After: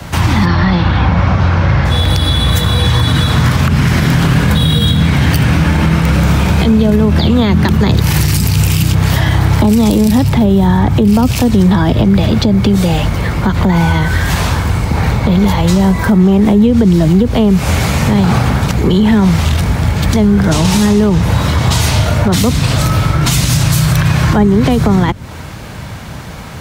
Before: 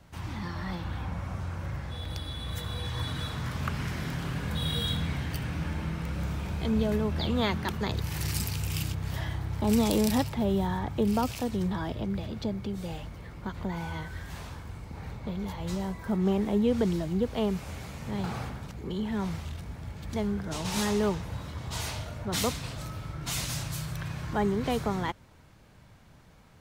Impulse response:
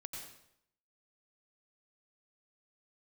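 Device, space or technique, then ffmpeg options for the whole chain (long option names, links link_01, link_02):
mastering chain: -filter_complex "[0:a]asplit=3[link_01][link_02][link_03];[link_01]afade=type=out:start_time=0.45:duration=0.02[link_04];[link_02]lowpass=frequency=5100:width=0.5412,lowpass=frequency=5100:width=1.3066,afade=type=in:start_time=0.45:duration=0.02,afade=type=out:start_time=1.84:duration=0.02[link_05];[link_03]afade=type=in:start_time=1.84:duration=0.02[link_06];[link_04][link_05][link_06]amix=inputs=3:normalize=0,highpass=48,equalizer=frequency=360:width_type=o:width=1.7:gain=-2,acrossover=split=140|340[link_07][link_08][link_09];[link_07]acompressor=threshold=-37dB:ratio=4[link_10];[link_08]acompressor=threshold=-31dB:ratio=4[link_11];[link_09]acompressor=threshold=-42dB:ratio=4[link_12];[link_10][link_11][link_12]amix=inputs=3:normalize=0,acompressor=threshold=-41dB:ratio=1.5,asoftclip=type=hard:threshold=-26.5dB,alimiter=level_in=31dB:limit=-1dB:release=50:level=0:latency=1,volume=-1dB"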